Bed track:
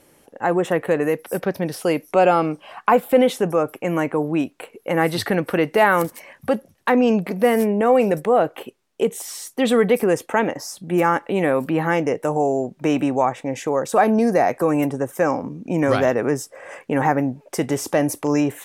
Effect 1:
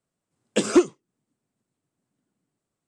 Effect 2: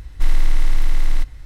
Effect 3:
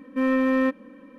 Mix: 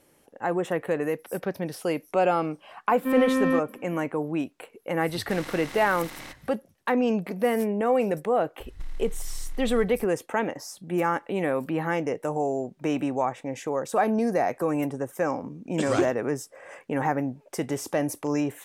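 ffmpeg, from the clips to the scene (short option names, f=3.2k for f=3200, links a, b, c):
-filter_complex "[2:a]asplit=2[a][b];[0:a]volume=-7dB[c];[a]highpass=150[d];[b]acompressor=threshold=-21dB:ratio=6:attack=3.2:release=140:knee=1:detection=peak[e];[3:a]atrim=end=1.18,asetpts=PTS-STARTPTS,volume=-2dB,afade=t=in:d=0.004:c=hsin,afade=t=out:st=1.176:d=0.004:c=hsin,adelay=2890[f];[d]atrim=end=1.45,asetpts=PTS-STARTPTS,volume=-4dB,afade=t=in:d=0.004:c=hsin,afade=t=out:st=1.446:d=0.004:c=hsin,adelay=224469S[g];[e]atrim=end=1.45,asetpts=PTS-STARTPTS,volume=-8.5dB,afade=t=in:d=0.004:c=hsin,afade=t=out:st=1.446:d=0.004:c=hsin,adelay=8600[h];[1:a]atrim=end=2.87,asetpts=PTS-STARTPTS,volume=-8.5dB,afade=t=in:d=0.004:c=hsin,afade=t=out:st=2.866:d=0.004:c=hsin,adelay=15220[i];[c][f][g][h][i]amix=inputs=5:normalize=0"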